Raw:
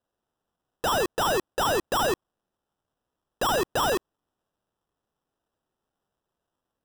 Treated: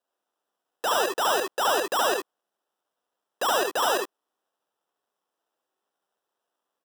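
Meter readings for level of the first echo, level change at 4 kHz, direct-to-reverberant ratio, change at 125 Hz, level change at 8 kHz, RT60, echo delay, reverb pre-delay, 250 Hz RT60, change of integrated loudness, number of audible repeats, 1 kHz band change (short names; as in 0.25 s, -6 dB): -3.0 dB, +2.0 dB, none, under -15 dB, +2.0 dB, none, 69 ms, none, none, +1.0 dB, 1, +1.5 dB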